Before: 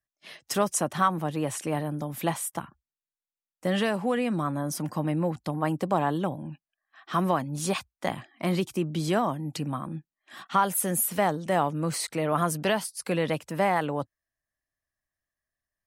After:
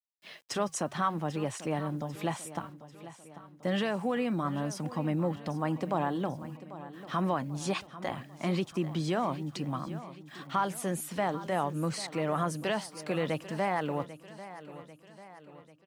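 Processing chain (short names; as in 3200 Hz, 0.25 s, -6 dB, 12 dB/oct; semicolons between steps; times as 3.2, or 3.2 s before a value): LPF 6500 Hz 12 dB/oct; in parallel at +2 dB: limiter -19 dBFS, peak gain reduction 8.5 dB; on the sum: flange 0.58 Hz, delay 0.3 ms, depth 3.4 ms, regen -89%; bit-crush 10-bit; feedback echo 0.793 s, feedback 52%, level -15 dB; gain -5.5 dB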